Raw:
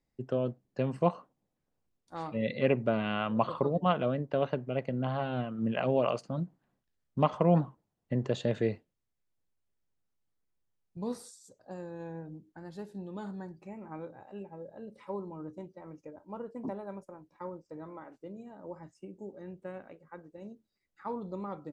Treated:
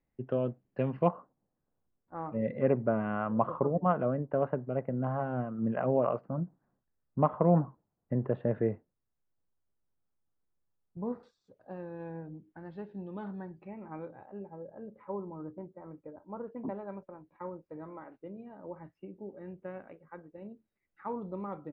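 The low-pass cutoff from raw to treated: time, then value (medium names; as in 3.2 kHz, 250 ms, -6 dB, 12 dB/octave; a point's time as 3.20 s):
low-pass 24 dB/octave
2.7 kHz
from 1.08 s 1.6 kHz
from 11.23 s 2.9 kHz
from 14.26 s 1.7 kHz
from 16.48 s 2.7 kHz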